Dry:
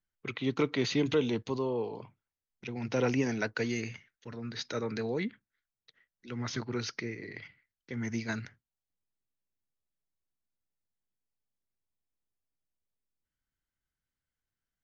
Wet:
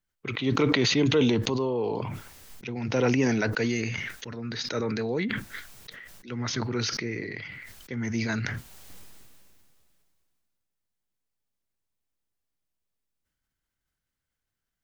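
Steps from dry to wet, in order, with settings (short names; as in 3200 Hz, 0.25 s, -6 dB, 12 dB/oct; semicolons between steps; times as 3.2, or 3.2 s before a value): sustainer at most 23 dB/s; gain +4 dB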